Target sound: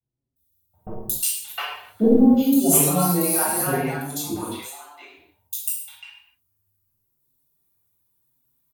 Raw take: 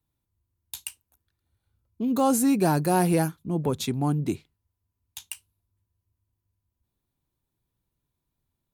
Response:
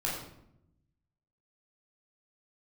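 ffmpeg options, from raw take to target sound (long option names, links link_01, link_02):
-filter_complex "[0:a]aemphasis=mode=production:type=bsi,asettb=1/sr,asplit=3[link_01][link_02][link_03];[link_01]atrim=end=0.824[link_04];[link_02]atrim=start=0.82:end=2.12,asetpts=PTS-STARTPTS,afade=type=in:duration=0.004:curve=qsin,afade=type=out:start_time=1.296:duration=0.004:curve=qsin,asplit=2[link_05][link_06];[link_06]highpass=frequency=720:poles=1,volume=32dB,asoftclip=type=tanh:threshold=0dB[link_07];[link_05][link_07]amix=inputs=2:normalize=0,lowpass=frequency=2700:poles=1,volume=-6dB[link_08];[link_03]atrim=start=2.116[link_09];[link_04][link_08]acrossfade=duration=0.004:curve1=hsin:curve2=qsin[link_10];[link_10][link_09]acrossfade=duration=0.004:curve1=qsin:curve2=hsin,asettb=1/sr,asplit=3[link_11][link_12][link_13];[link_11]atrim=end=3.814[link_14];[link_12]atrim=start=3.81:end=4.26,asetpts=PTS-STARTPTS,afade=type=in:duration=0.004:curve=qsin,afade=type=out:start_time=0.446:duration=0.004:curve=qsin,acrossover=split=520|2900[link_15][link_16][link_17];[link_15]acompressor=threshold=-42dB:ratio=4[link_18];[link_16]acompressor=threshold=-37dB:ratio=4[link_19];[link_17]acompressor=threshold=-29dB:ratio=4[link_20];[link_18][link_19][link_20]amix=inputs=3:normalize=0[link_21];[link_13]atrim=start=4.256[link_22];[link_14][link_21]acrossfade=duration=0.004:curve1=hsin:curve2=qsin[link_23];[link_23][link_22]acrossfade=duration=0.004:curve1=qsin:curve2=hsin,acrossover=split=640|3300[link_24][link_25][link_26];[link_26]adelay=360[link_27];[link_25]adelay=710[link_28];[link_24][link_28][link_27]amix=inputs=3:normalize=0[link_29];[1:a]atrim=start_sample=2205,afade=type=out:start_time=0.31:duration=0.01,atrim=end_sample=14112,asetrate=36603,aresample=44100[link_30];[link_29][link_30]afir=irnorm=-1:irlink=0,asplit=2[link_31][link_32];[link_32]adelay=5.8,afreqshift=0.85[link_33];[link_31][link_33]amix=inputs=2:normalize=1"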